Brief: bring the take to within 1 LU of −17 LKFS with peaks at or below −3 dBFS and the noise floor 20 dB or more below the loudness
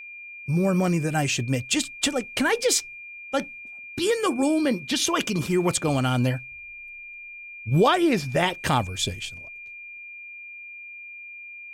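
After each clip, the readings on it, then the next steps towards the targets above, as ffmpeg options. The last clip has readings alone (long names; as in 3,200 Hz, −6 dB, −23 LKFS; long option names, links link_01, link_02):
interfering tone 2,400 Hz; level of the tone −38 dBFS; integrated loudness −24.0 LKFS; sample peak −7.5 dBFS; target loudness −17.0 LKFS
→ -af "bandreject=frequency=2400:width=30"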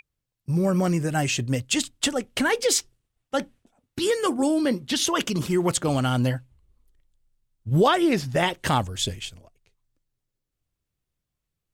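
interfering tone none found; integrated loudness −24.0 LKFS; sample peak −7.5 dBFS; target loudness −17.0 LKFS
→ -af "volume=7dB,alimiter=limit=-3dB:level=0:latency=1"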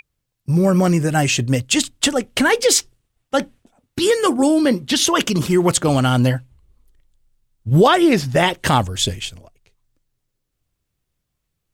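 integrated loudness −17.0 LKFS; sample peak −3.0 dBFS; background noise floor −76 dBFS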